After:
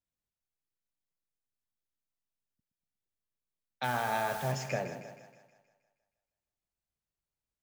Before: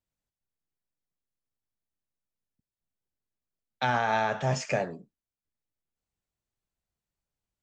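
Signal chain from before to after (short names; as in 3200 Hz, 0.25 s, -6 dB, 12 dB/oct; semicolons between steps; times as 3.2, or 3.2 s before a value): 3.83–4.51 added noise white -42 dBFS; split-band echo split 630 Hz, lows 0.12 s, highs 0.158 s, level -10 dB; gain -6 dB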